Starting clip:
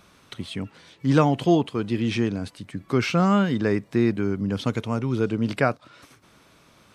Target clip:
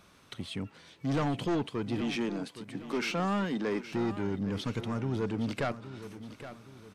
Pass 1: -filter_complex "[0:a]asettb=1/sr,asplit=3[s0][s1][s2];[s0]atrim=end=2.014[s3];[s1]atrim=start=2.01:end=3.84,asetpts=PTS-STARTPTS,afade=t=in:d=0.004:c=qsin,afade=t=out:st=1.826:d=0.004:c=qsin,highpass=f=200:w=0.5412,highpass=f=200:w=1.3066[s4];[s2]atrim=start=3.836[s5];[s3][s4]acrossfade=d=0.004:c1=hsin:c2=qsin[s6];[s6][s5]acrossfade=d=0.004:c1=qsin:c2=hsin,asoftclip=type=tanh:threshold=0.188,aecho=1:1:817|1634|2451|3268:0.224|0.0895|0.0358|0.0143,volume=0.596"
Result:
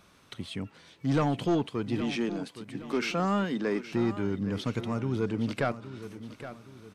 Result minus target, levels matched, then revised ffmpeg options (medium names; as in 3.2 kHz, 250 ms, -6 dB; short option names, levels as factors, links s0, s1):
saturation: distortion -6 dB
-filter_complex "[0:a]asettb=1/sr,asplit=3[s0][s1][s2];[s0]atrim=end=2.014[s3];[s1]atrim=start=2.01:end=3.84,asetpts=PTS-STARTPTS,afade=t=in:d=0.004:c=qsin,afade=t=out:st=1.826:d=0.004:c=qsin,highpass=f=200:w=0.5412,highpass=f=200:w=1.3066[s4];[s2]atrim=start=3.836[s5];[s3][s4]acrossfade=d=0.004:c1=hsin:c2=qsin[s6];[s6][s5]acrossfade=d=0.004:c1=qsin:c2=hsin,asoftclip=type=tanh:threshold=0.0891,aecho=1:1:817|1634|2451|3268:0.224|0.0895|0.0358|0.0143,volume=0.596"